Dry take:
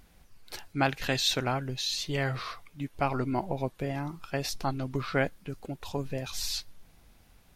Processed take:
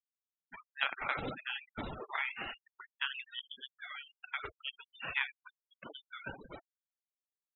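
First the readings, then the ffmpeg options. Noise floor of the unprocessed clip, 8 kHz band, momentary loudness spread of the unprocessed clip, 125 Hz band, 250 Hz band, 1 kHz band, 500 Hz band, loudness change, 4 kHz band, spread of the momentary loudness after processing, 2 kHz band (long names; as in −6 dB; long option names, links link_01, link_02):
−60 dBFS, below −40 dB, 13 LU, −21.5 dB, −17.5 dB, −9.5 dB, −16.5 dB, −7.5 dB, −9.5 dB, 16 LU, −2.0 dB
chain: -filter_complex "[0:a]asplit=2[link_01][link_02];[link_02]aecho=0:1:74:0.15[link_03];[link_01][link_03]amix=inputs=2:normalize=0,agate=range=-33dB:threshold=-45dB:ratio=3:detection=peak,highpass=frequency=1400:poles=1,aderivative,acompressor=threshold=-41dB:ratio=5,aresample=11025,acrusher=bits=2:mode=log:mix=0:aa=0.000001,aresample=44100,lowpass=frequency=3400:width_type=q:width=0.5098,lowpass=frequency=3400:width_type=q:width=0.6013,lowpass=frequency=3400:width_type=q:width=0.9,lowpass=frequency=3400:width_type=q:width=2.563,afreqshift=-4000,afftfilt=real='re*gte(hypot(re,im),0.00316)':imag='im*gte(hypot(re,im),0.00316)':win_size=1024:overlap=0.75,volume=13.5dB"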